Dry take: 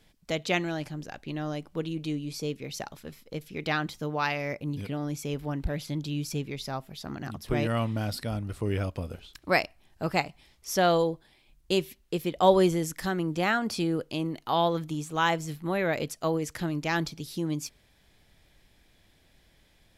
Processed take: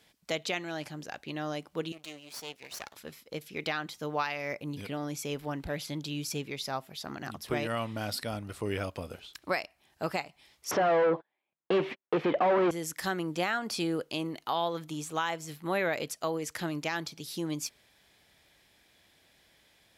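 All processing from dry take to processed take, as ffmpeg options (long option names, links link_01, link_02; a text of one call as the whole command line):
ffmpeg -i in.wav -filter_complex "[0:a]asettb=1/sr,asplit=3[link_01][link_02][link_03];[link_01]atrim=end=1.924[link_04];[link_02]atrim=start=1.92:end=2.96,asetpts=PTS-STARTPTS,afade=type=in:duration=0.004:curve=qsin,afade=type=out:start_time=1.036:duration=0.004:curve=qsin,highpass=frequency=820:poles=1,aeval=exprs='max(val(0),0)':channel_layout=same[link_05];[link_03]atrim=start=2.956[link_06];[link_04][link_05]acrossfade=duration=0.004:curve1=hsin:curve2=qsin[link_07];[link_07][link_06]acrossfade=duration=0.004:curve1=qsin:curve2=hsin,asettb=1/sr,asplit=3[link_08][link_09][link_10];[link_08]atrim=end=10.714[link_11];[link_09]atrim=start=10.71:end=12.71,asetpts=PTS-STARTPTS,afade=type=in:duration=0.004:curve=qsin,afade=type=out:start_time=1.996:duration=0.004:curve=qsin,agate=range=-41dB:threshold=-52dB:ratio=16:release=100:detection=peak,asplit=2[link_12][link_13];[link_13]highpass=frequency=720:poles=1,volume=37dB,asoftclip=type=tanh:threshold=-7.5dB[link_14];[link_12][link_14]amix=inputs=2:normalize=0,lowpass=frequency=1100:poles=1,volume=-6dB,highpass=110,lowpass=2200[link_15];[link_10]atrim=start=12.706[link_16];[link_11][link_15]acrossfade=duration=0.004:curve1=hsin:curve2=qsin[link_17];[link_17][link_16]acrossfade=duration=0.004:curve1=qsin:curve2=hsin,highpass=60,lowshelf=frequency=290:gain=-11,alimiter=limit=-20.5dB:level=0:latency=1:release=361,volume=2dB" out.wav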